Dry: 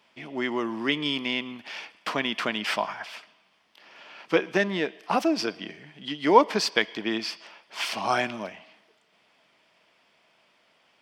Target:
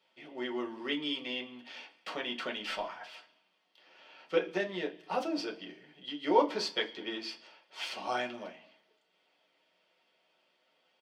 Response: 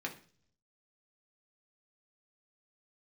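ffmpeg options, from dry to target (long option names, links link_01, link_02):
-filter_complex "[0:a]asplit=2[link_01][link_02];[link_02]adelay=221.6,volume=-27dB,highshelf=frequency=4000:gain=-4.99[link_03];[link_01][link_03]amix=inputs=2:normalize=0[link_04];[1:a]atrim=start_sample=2205,asetrate=79380,aresample=44100[link_05];[link_04][link_05]afir=irnorm=-1:irlink=0,asettb=1/sr,asplit=3[link_06][link_07][link_08];[link_06]atrim=end=2.564[link_09];[link_07]atrim=start=2.56:end=3.14,asetpts=PTS-STARTPTS,afade=type=in:duration=0.004:curve=qsin,afade=type=out:start_time=0.576:duration=0.004:curve=qsin,aeval=exprs='0.112*(cos(1*acos(clip(val(0)/0.112,-1,1)))-cos(1*PI/2))+0.00631*(cos(2*acos(clip(val(0)/0.112,-1,1)))-cos(2*PI/2))':channel_layout=same[link_10];[link_08]atrim=start=3.136[link_11];[link_09][link_10]acrossfade=duration=0.004:curve1=hsin:curve2=qsin[link_12];[link_12][link_11]acrossfade=duration=0.004:curve1=qsin:curve2=hsin,volume=-5.5dB"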